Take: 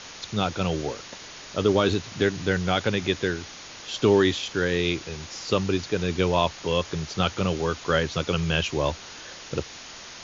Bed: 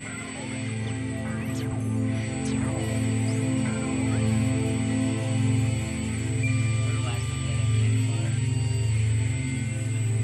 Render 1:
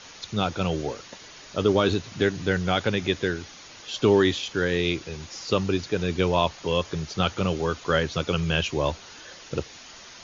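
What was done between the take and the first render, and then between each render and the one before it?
denoiser 6 dB, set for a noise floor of -42 dBFS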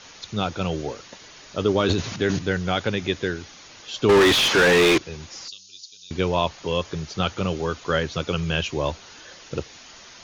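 1.8–2.39 transient shaper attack -1 dB, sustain +10 dB; 4.09–4.98 overdrive pedal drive 34 dB, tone 2900 Hz, clips at -8.5 dBFS; 5.48–6.11 inverse Chebyshev high-pass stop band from 2000 Hz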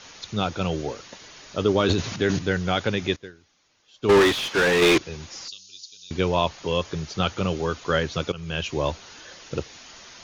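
3.16–4.82 upward expander 2.5:1, over -27 dBFS; 8.32–8.77 fade in linear, from -16 dB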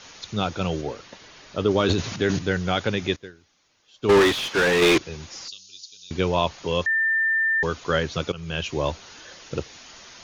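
0.81–1.71 air absorption 80 m; 6.86–7.63 bleep 1790 Hz -18.5 dBFS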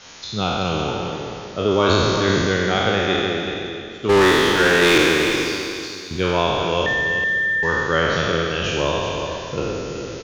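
spectral trails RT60 2.56 s; echo 0.377 s -8.5 dB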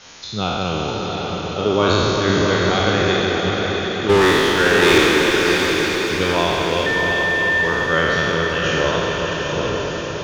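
diffused feedback echo 0.705 s, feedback 51%, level -4 dB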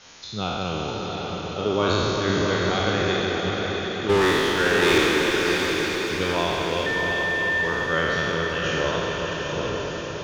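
gain -5.5 dB

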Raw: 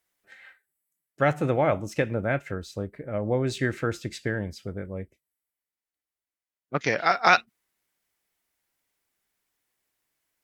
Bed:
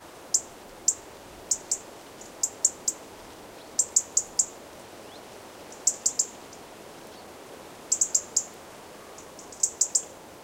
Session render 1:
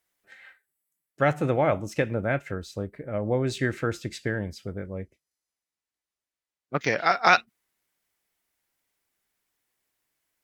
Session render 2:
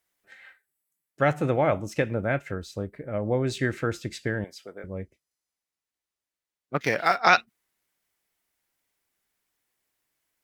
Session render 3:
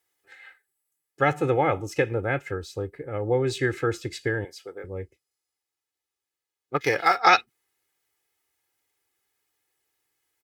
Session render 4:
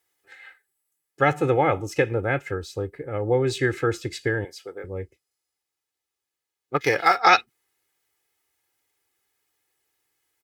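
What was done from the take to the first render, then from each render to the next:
4.78–6.85 decimation joined by straight lines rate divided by 2×
4.44–4.84 HPF 480 Hz; 6.76–7.18 median filter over 5 samples
HPF 72 Hz; comb 2.4 ms, depth 71%
gain +2 dB; limiter -3 dBFS, peak gain reduction 1.5 dB

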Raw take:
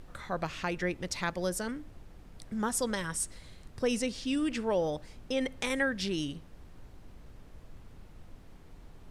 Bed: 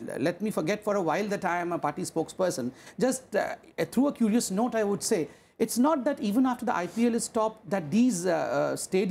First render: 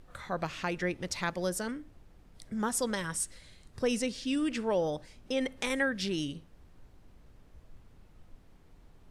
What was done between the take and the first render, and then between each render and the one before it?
noise print and reduce 6 dB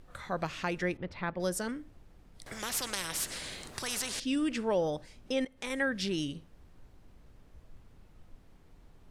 0.97–1.4 air absorption 430 m; 2.46–4.2 spectral compressor 4:1; 5.45–5.91 fade in, from -16 dB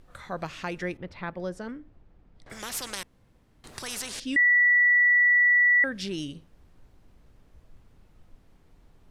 1.4–2.5 tape spacing loss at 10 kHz 22 dB; 3.03–3.64 room tone; 4.36–5.84 bleep 1950 Hz -16.5 dBFS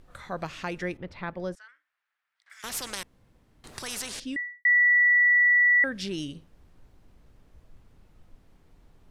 1.55–2.64 ladder high-pass 1300 Hz, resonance 40%; 4.12–4.65 studio fade out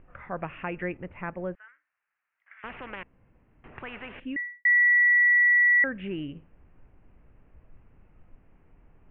steep low-pass 2800 Hz 72 dB/oct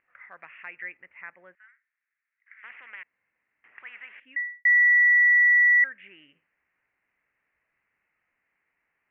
in parallel at -7.5 dB: overloaded stage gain 23 dB; on the sum: band-pass 2000 Hz, Q 4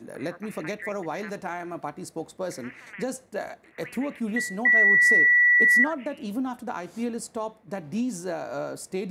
add bed -5 dB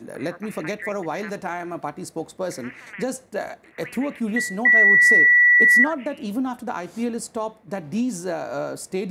gain +4 dB

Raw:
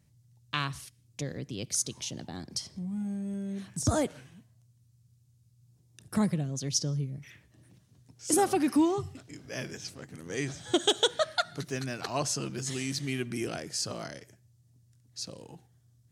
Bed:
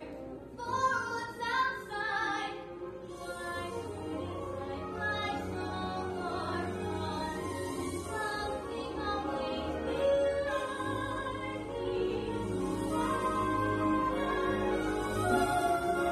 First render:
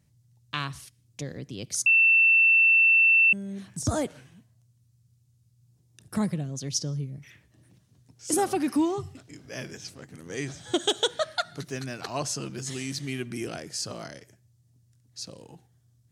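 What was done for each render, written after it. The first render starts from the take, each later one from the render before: 1.86–3.33 bleep 2680 Hz -15.5 dBFS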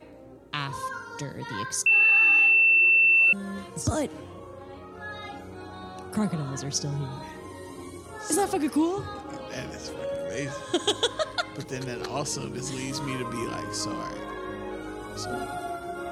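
add bed -4.5 dB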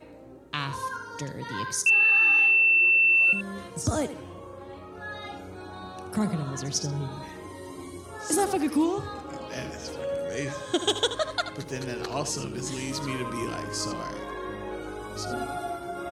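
echo 79 ms -11.5 dB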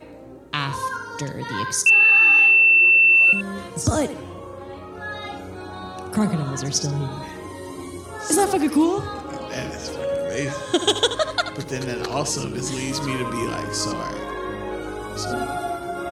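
gain +6 dB

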